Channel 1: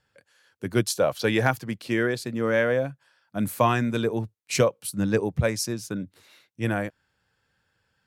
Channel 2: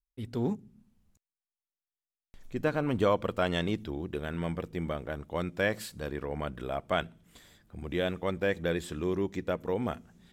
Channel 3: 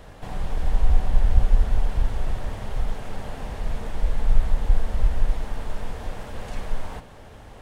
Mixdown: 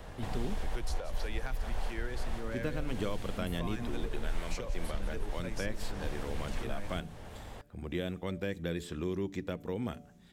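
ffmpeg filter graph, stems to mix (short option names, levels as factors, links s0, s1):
-filter_complex "[0:a]asoftclip=type=tanh:threshold=0.299,volume=0.224,asplit=3[s0][s1][s2];[s1]volume=0.15[s3];[1:a]volume=0.891[s4];[2:a]volume=0.794[s5];[s2]apad=whole_len=335673[s6];[s5][s6]sidechaincompress=threshold=0.01:ratio=4:attack=9.3:release=280[s7];[s3]aecho=0:1:175|350|525|700|875|1050|1225|1400:1|0.56|0.314|0.176|0.0983|0.0551|0.0308|0.0173[s8];[s0][s4][s7][s8]amix=inputs=4:normalize=0,bandreject=f=145:t=h:w=4,bandreject=f=290:t=h:w=4,bandreject=f=435:t=h:w=4,bandreject=f=580:t=h:w=4,bandreject=f=725:t=h:w=4,acrossover=split=360|2100|6100[s9][s10][s11][s12];[s9]acompressor=threshold=0.0282:ratio=4[s13];[s10]acompressor=threshold=0.00794:ratio=4[s14];[s11]acompressor=threshold=0.00562:ratio=4[s15];[s12]acompressor=threshold=0.002:ratio=4[s16];[s13][s14][s15][s16]amix=inputs=4:normalize=0"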